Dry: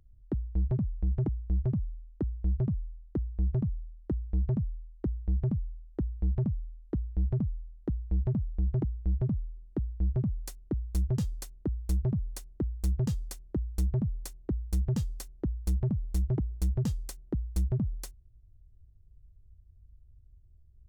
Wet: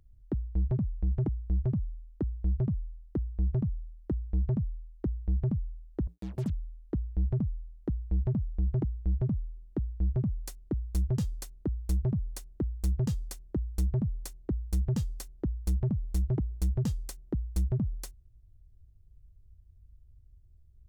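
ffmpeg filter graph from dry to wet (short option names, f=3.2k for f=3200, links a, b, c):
-filter_complex "[0:a]asettb=1/sr,asplit=3[a][b][c];[a]atrim=end=6.074[d];[b]atrim=start=6.07:end=6.5,asetpts=PTS-STARTPTS,afade=t=in:d=0.004:c=qsin,afade=t=out:st=0.426:d=0.004:c=qsin,highpass=140,acrusher=bits=7:mix=0:aa=0.5,acompressor=mode=upward:threshold=-53dB:ratio=2.5:attack=3.2:release=140:knee=2.83:detection=peak[e];[c]atrim=start=6.496[f];[d][e]acrossfade=d=0.004:c1=hsin:c2=qsin[g];[g][f]acrossfade=d=0.004:c1=qsin:c2=hsin"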